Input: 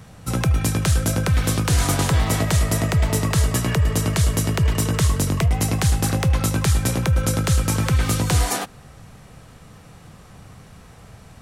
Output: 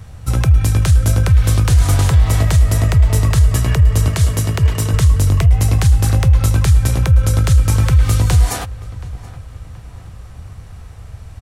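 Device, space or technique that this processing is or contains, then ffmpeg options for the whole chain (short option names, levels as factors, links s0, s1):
car stereo with a boomy subwoofer: -filter_complex "[0:a]asettb=1/sr,asplit=3[s0][s1][s2];[s0]atrim=end=4.084[s3];[s1]atrim=start=4.08:end=4.94,asetpts=PTS-STARTPTS,afade=t=in:d=0.004:c=qsin,afade=t=out:st=0.856:d=0.004:c=qsin,highpass=110[s4];[s2]atrim=start=4.936[s5];[s3][s4]acrossfade=d=0.004:c1=hsin:c2=qsin[s6];[s6][s5]acrossfade=d=0.004:c1=qsin:c2=hsin,lowshelf=f=120:t=q:w=1.5:g=11.5,alimiter=limit=0.562:level=0:latency=1:release=91,asplit=2[s7][s8];[s8]adelay=726,lowpass=f=2900:p=1,volume=0.119,asplit=2[s9][s10];[s10]adelay=726,lowpass=f=2900:p=1,volume=0.5,asplit=2[s11][s12];[s12]adelay=726,lowpass=f=2900:p=1,volume=0.5,asplit=2[s13][s14];[s14]adelay=726,lowpass=f=2900:p=1,volume=0.5[s15];[s7][s9][s11][s13][s15]amix=inputs=5:normalize=0,volume=1.12"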